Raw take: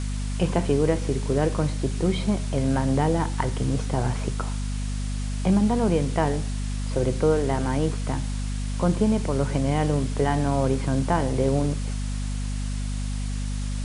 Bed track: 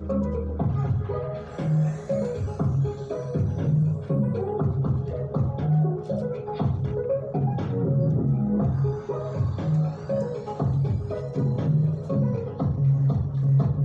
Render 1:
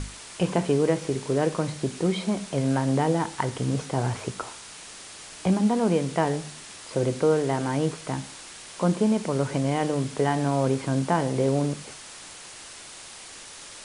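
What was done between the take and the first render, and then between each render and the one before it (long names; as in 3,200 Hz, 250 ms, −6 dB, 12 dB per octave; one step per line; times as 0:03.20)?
mains-hum notches 50/100/150/200/250 Hz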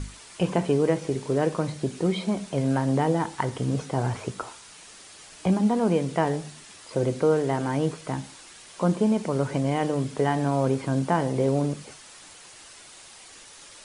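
broadband denoise 6 dB, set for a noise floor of −43 dBFS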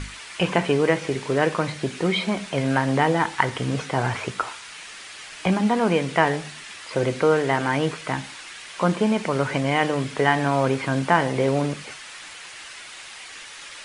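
parametric band 2,100 Hz +13 dB 2.3 octaves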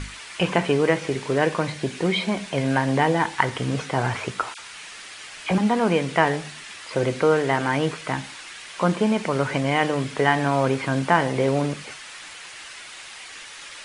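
0:01.38–0:03.38: notch filter 1,300 Hz, Q 11
0:04.54–0:05.58: all-pass dispersion lows, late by 49 ms, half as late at 1,700 Hz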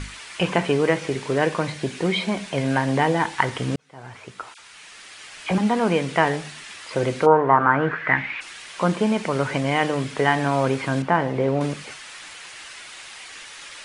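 0:03.76–0:05.61: fade in
0:07.25–0:08.40: low-pass with resonance 860 Hz → 2,500 Hz, resonance Q 6.6
0:11.02–0:11.61: low-pass filter 1,600 Hz 6 dB per octave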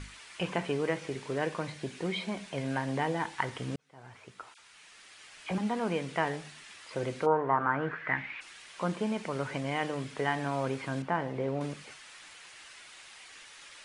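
level −11 dB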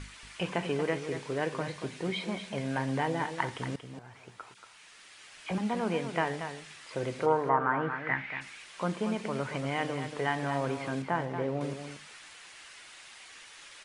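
single-tap delay 232 ms −9 dB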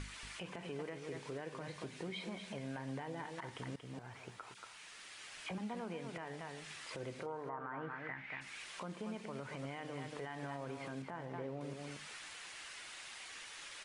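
downward compressor 3 to 1, threshold −43 dBFS, peak gain reduction 16.5 dB
brickwall limiter −33.5 dBFS, peak gain reduction 9.5 dB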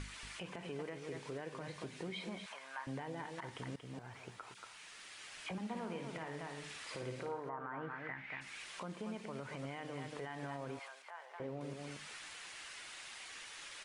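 0:02.46–0:02.87: high-pass with resonance 1,100 Hz, resonance Q 2.7
0:05.59–0:07.40: flutter between parallel walls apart 9.5 metres, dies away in 0.5 s
0:10.79–0:11.40: Bessel high-pass filter 940 Hz, order 6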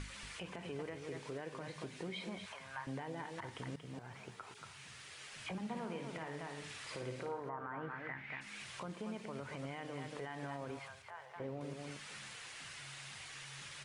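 mix in bed track −39 dB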